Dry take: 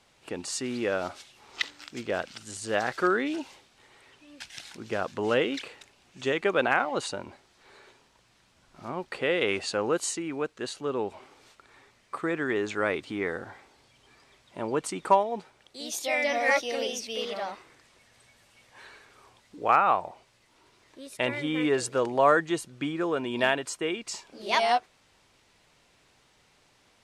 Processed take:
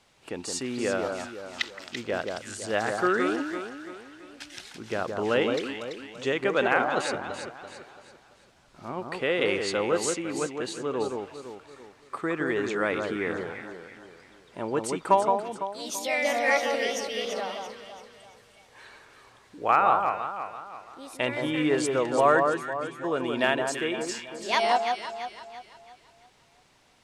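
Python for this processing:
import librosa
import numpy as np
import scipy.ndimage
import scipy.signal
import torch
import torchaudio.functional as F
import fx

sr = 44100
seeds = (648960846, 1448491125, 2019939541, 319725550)

p1 = fx.stiff_resonator(x, sr, f0_hz=130.0, decay_s=0.29, stiffness=0.002, at=(22.45, 23.03), fade=0.02)
y = p1 + fx.echo_alternate(p1, sr, ms=168, hz=1500.0, feedback_pct=64, wet_db=-4, dry=0)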